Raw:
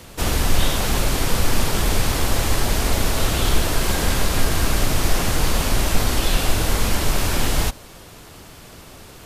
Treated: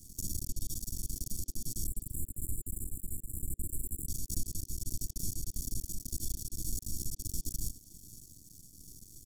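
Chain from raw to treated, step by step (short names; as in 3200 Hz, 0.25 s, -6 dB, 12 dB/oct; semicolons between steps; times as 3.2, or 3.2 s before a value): compressor, threshold -17 dBFS, peak gain reduction 8 dB; comb 0.9 ms, depth 85%; limiter -13.5 dBFS, peak gain reduction 8 dB; half-wave rectifier; elliptic band-stop 330–6000 Hz, stop band 80 dB; resonant low shelf 500 Hz -8 dB, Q 1.5; spectral delete 1.86–4.07, 550–7100 Hz; speakerphone echo 0.3 s, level -14 dB; noise-modulated level, depth 60%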